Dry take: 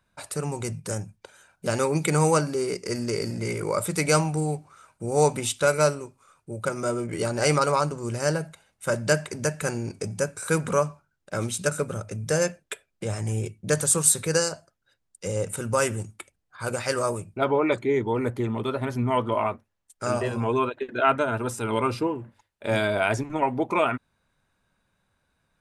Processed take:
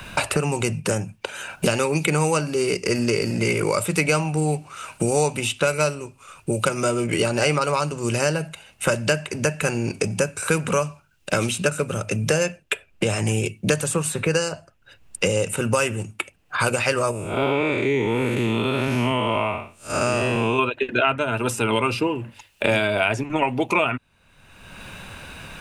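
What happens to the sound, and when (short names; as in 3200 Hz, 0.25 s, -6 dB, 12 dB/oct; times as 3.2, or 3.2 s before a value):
17.11–20.59 time blur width 0.198 s
whole clip: bell 2700 Hz +12.5 dB 0.36 oct; three-band squash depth 100%; gain +2.5 dB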